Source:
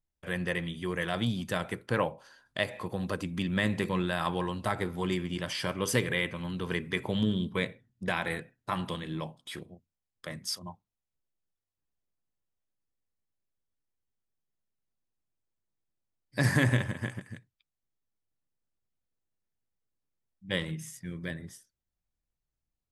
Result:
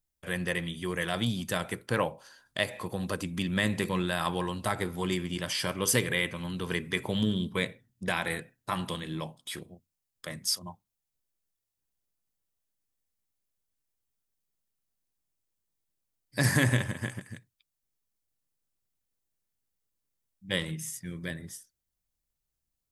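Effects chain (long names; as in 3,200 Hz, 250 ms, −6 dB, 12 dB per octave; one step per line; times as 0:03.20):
high-shelf EQ 5,200 Hz +10 dB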